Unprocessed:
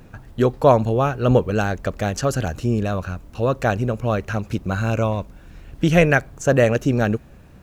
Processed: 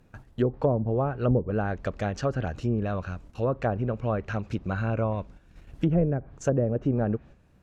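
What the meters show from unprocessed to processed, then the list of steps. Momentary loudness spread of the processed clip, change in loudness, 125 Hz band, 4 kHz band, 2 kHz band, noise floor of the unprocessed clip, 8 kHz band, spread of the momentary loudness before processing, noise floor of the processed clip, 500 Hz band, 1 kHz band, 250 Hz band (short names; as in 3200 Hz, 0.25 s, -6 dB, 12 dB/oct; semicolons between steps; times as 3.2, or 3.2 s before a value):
7 LU, -7.5 dB, -6.0 dB, -14.0 dB, -13.5 dB, -46 dBFS, under -10 dB, 10 LU, -58 dBFS, -8.5 dB, -10.0 dB, -6.0 dB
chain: treble ducked by the level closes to 420 Hz, closed at -12 dBFS; gate -39 dBFS, range -8 dB; gain -6 dB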